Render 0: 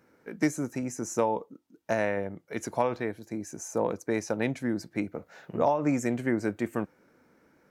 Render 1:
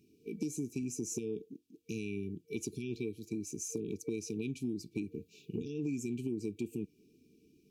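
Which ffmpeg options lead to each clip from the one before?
-af "alimiter=limit=-18dB:level=0:latency=1:release=59,afftfilt=real='re*(1-between(b*sr/4096,460,2300))':imag='im*(1-between(b*sr/4096,460,2300))':win_size=4096:overlap=0.75,acompressor=threshold=-33dB:ratio=6"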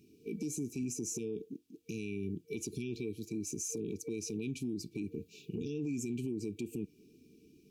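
-af "alimiter=level_in=9.5dB:limit=-24dB:level=0:latency=1:release=40,volume=-9.5dB,volume=4dB"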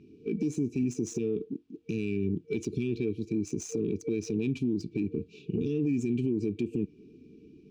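-af "adynamicsmooth=sensitivity=6:basefreq=2.5k,volume=8.5dB"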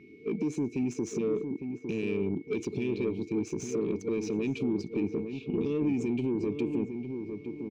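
-filter_complex "[0:a]asplit=2[a][b];[b]highpass=f=720:p=1,volume=13dB,asoftclip=type=tanh:threshold=-21dB[c];[a][c]amix=inputs=2:normalize=0,lowpass=f=2k:p=1,volume=-6dB,asplit=2[d][e];[e]adelay=856,lowpass=f=1k:p=1,volume=-6.5dB,asplit=2[f][g];[g]adelay=856,lowpass=f=1k:p=1,volume=0.35,asplit=2[h][i];[i]adelay=856,lowpass=f=1k:p=1,volume=0.35,asplit=2[j][k];[k]adelay=856,lowpass=f=1k:p=1,volume=0.35[l];[d][f][h][j][l]amix=inputs=5:normalize=0,aeval=exprs='val(0)+0.00112*sin(2*PI*2200*n/s)':c=same"

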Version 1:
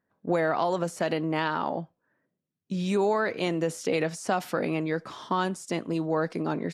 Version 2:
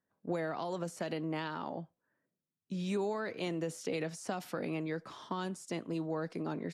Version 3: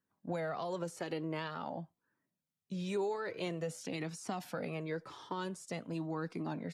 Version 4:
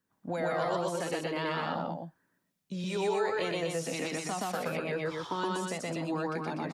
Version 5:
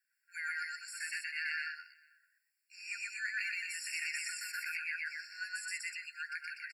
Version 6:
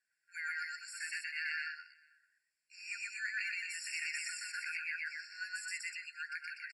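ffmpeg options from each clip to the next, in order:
-filter_complex "[0:a]acrossover=split=380|3000[a][b][c];[b]acompressor=threshold=-31dB:ratio=2.5[d];[a][d][c]amix=inputs=3:normalize=0,volume=-7.5dB"
-af "flanger=delay=0.7:depth=1.7:regen=-34:speed=0.48:shape=triangular,volume=2.5dB"
-filter_complex "[0:a]aecho=1:1:122.4|244.9:1|0.631,acrossover=split=460[a][b];[a]alimiter=level_in=11.5dB:limit=-24dB:level=0:latency=1:release=498,volume=-11.5dB[c];[c][b]amix=inputs=2:normalize=0,volume=5dB"
-filter_complex "[0:a]asplit=2[a][b];[b]adelay=443.1,volume=-26dB,highshelf=f=4k:g=-9.97[c];[a][c]amix=inputs=2:normalize=0,afftfilt=real='re*eq(mod(floor(b*sr/1024/1400),2),1)':imag='im*eq(mod(floor(b*sr/1024/1400),2),1)':win_size=1024:overlap=0.75,volume=3dB"
-af "aresample=22050,aresample=44100,volume=-1dB"

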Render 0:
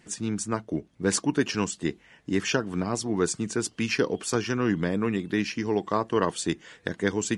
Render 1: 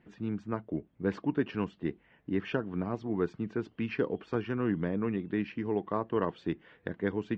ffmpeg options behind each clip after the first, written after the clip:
-af "lowpass=f=3.2k:w=0.5412,lowpass=f=3.2k:w=1.3066,tiltshelf=f=1.5k:g=4,volume=-8.5dB"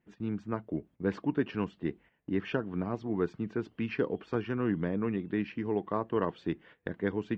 -af "agate=range=-12dB:threshold=-53dB:ratio=16:detection=peak"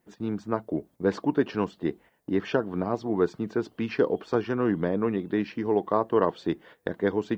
-af "aexciter=amount=3.9:drive=5.4:freq=3.7k,equalizer=f=670:t=o:w=2.5:g=9.5"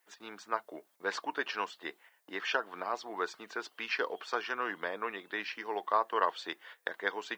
-af "highpass=1.2k,volume=4dB"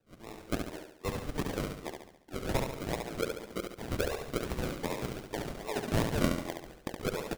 -filter_complex "[0:a]acrusher=samples=40:mix=1:aa=0.000001:lfo=1:lforange=24:lforate=2.6,asplit=2[a][b];[b]aecho=0:1:70|140|210|280|350|420:0.562|0.27|0.13|0.0622|0.0299|0.0143[c];[a][c]amix=inputs=2:normalize=0"

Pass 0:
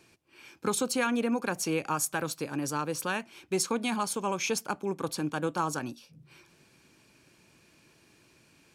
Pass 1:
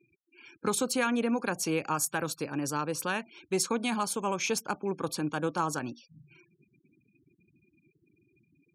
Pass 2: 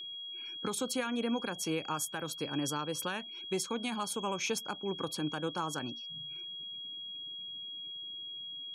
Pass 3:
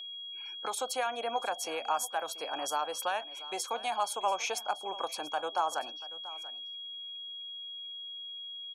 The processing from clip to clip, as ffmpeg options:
-af "afftfilt=real='re*gte(hypot(re,im),0.00316)':imag='im*gte(hypot(re,im),0.00316)':win_size=1024:overlap=0.75"
-af "aeval=exprs='val(0)+0.0112*sin(2*PI*3300*n/s)':c=same,alimiter=limit=-22dB:level=0:latency=1:release=395,volume=-1.5dB"
-af "highpass=f=700:t=q:w=4.9,aecho=1:1:686:0.141"

